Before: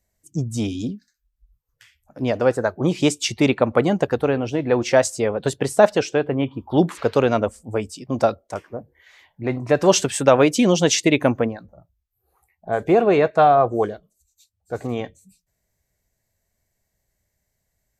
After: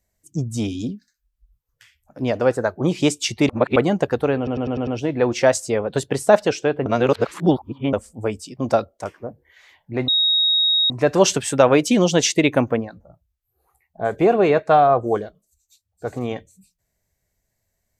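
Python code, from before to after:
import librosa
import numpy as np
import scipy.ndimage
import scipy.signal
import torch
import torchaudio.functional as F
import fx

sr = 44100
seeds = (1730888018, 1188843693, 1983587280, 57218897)

y = fx.edit(x, sr, fx.reverse_span(start_s=3.49, length_s=0.27),
    fx.stutter(start_s=4.37, slice_s=0.1, count=6),
    fx.reverse_span(start_s=6.36, length_s=1.07),
    fx.insert_tone(at_s=9.58, length_s=0.82, hz=3770.0, db=-14.5), tone=tone)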